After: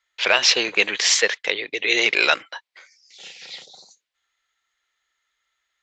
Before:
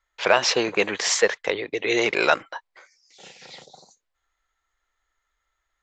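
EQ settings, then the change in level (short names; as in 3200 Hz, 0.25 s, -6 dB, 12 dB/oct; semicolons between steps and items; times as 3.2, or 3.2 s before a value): weighting filter D; -3.5 dB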